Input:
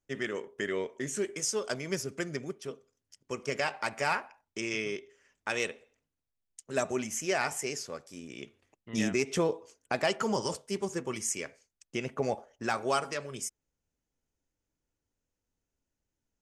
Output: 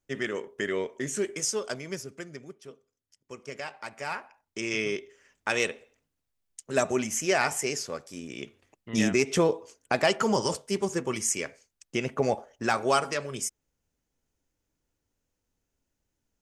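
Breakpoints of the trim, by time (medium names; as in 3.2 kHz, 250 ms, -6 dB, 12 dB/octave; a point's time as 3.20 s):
1.44 s +3 dB
2.29 s -6.5 dB
3.95 s -6.5 dB
4.84 s +5 dB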